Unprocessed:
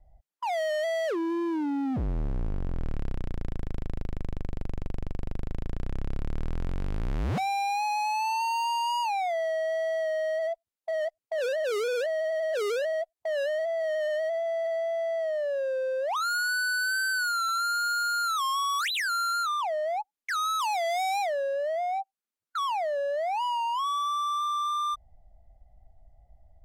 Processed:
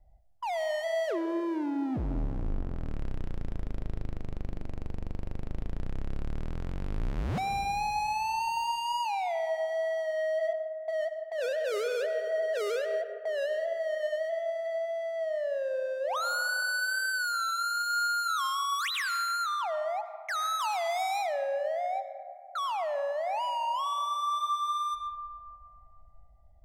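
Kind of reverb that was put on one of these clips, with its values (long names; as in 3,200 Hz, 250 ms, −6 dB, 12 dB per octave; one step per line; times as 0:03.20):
comb and all-pass reverb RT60 2.6 s, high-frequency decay 0.3×, pre-delay 50 ms, DRR 9.5 dB
level −3 dB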